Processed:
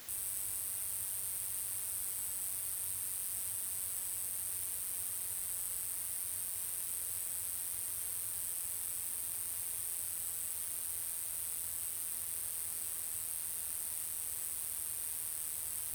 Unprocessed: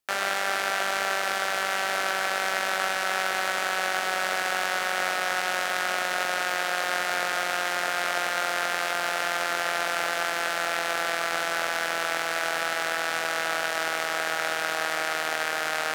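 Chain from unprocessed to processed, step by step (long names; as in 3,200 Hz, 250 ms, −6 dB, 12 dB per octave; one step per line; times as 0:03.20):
brick-wall band-stop 110–8,000 Hz
background noise white −56 dBFS
level +5.5 dB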